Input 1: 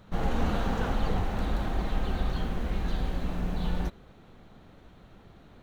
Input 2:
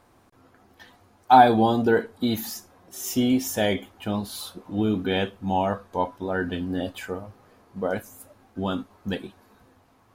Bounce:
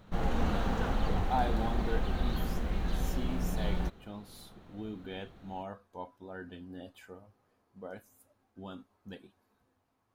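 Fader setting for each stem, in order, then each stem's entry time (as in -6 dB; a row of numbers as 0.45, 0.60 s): -2.5, -17.5 dB; 0.00, 0.00 s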